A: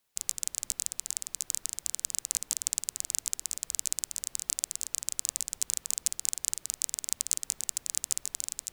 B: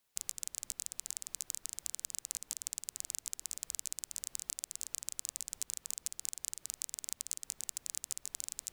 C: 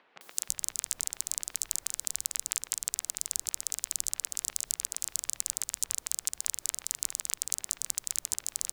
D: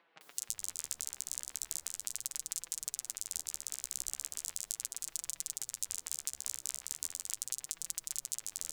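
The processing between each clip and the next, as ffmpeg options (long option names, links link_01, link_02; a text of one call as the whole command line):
ffmpeg -i in.wav -af "acompressor=threshold=-32dB:ratio=6,volume=-1.5dB" out.wav
ffmpeg -i in.wav -filter_complex "[0:a]acompressor=mode=upward:threshold=-51dB:ratio=2.5,acrossover=split=220|2700[link_01][link_02][link_03];[link_03]adelay=210[link_04];[link_01]adelay=330[link_05];[link_05][link_02][link_04]amix=inputs=3:normalize=0,volume=8dB" out.wav
ffmpeg -i in.wav -af "flanger=delay=5.9:depth=9.4:regen=21:speed=0.38:shape=sinusoidal,volume=-2.5dB" out.wav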